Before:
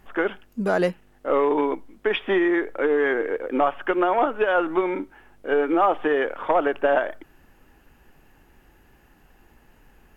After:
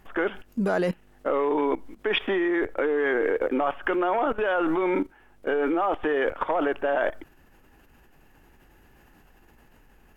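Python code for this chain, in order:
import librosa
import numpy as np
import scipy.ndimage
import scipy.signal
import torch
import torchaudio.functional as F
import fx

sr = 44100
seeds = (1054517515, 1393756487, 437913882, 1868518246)

y = fx.level_steps(x, sr, step_db=16)
y = F.gain(torch.from_numpy(y), 8.5).numpy()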